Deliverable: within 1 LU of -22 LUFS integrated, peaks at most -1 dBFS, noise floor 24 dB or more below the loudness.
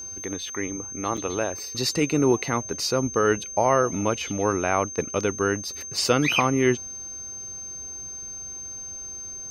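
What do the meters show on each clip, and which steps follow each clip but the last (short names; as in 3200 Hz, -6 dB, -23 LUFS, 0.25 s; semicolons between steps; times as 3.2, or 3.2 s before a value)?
dropouts 1; longest dropout 5.3 ms; steady tone 6300 Hz; tone level -34 dBFS; loudness -25.5 LUFS; peak -5.0 dBFS; loudness target -22.0 LUFS
-> interpolate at 1.17, 5.3 ms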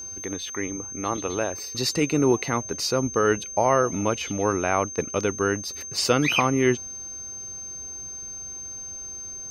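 dropouts 0; steady tone 6300 Hz; tone level -34 dBFS
-> notch 6300 Hz, Q 30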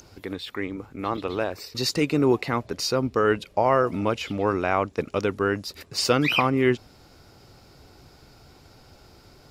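steady tone none; loudness -24.5 LUFS; peak -5.0 dBFS; loudness target -22.0 LUFS
-> gain +2.5 dB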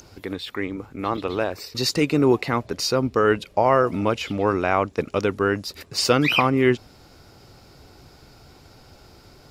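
loudness -22.0 LUFS; peak -2.5 dBFS; noise floor -51 dBFS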